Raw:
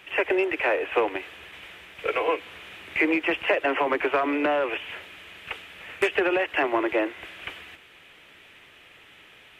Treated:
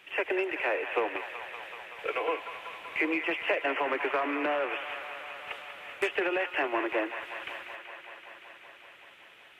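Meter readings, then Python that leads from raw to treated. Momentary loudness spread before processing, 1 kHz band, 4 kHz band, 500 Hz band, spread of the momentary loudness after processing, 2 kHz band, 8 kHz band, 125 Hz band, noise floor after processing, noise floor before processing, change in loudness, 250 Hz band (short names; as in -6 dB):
18 LU, -4.5 dB, -4.5 dB, -6.0 dB, 17 LU, -4.0 dB, n/a, under -10 dB, -54 dBFS, -52 dBFS, -6.5 dB, -7.0 dB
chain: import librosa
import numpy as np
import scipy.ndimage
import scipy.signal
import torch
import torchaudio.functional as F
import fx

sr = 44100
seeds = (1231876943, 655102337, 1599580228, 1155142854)

p1 = fx.low_shelf(x, sr, hz=130.0, db=-11.5)
p2 = p1 + fx.echo_wet_bandpass(p1, sr, ms=190, feedback_pct=81, hz=1500.0, wet_db=-8.5, dry=0)
y = p2 * 10.0 ** (-5.5 / 20.0)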